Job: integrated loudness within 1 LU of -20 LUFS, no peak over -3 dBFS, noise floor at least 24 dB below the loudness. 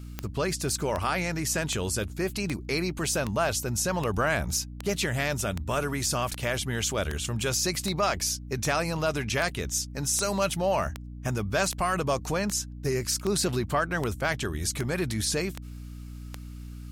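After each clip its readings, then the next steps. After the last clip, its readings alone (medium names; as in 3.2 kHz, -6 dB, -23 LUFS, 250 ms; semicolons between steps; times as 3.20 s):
clicks found 22; hum 60 Hz; highest harmonic 300 Hz; hum level -38 dBFS; loudness -28.0 LUFS; peak level -11.0 dBFS; loudness target -20.0 LUFS
-> de-click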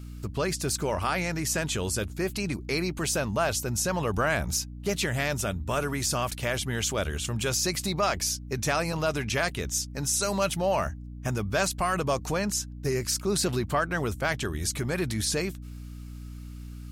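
clicks found 0; hum 60 Hz; highest harmonic 300 Hz; hum level -38 dBFS
-> de-hum 60 Hz, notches 5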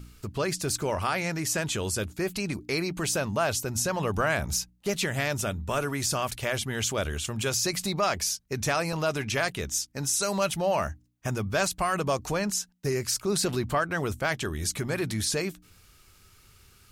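hum not found; loudness -28.5 LUFS; peak level -13.0 dBFS; loudness target -20.0 LUFS
-> trim +8.5 dB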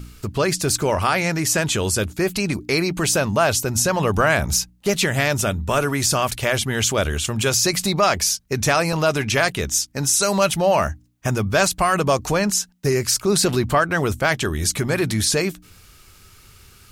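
loudness -20.0 LUFS; peak level -4.5 dBFS; noise floor -50 dBFS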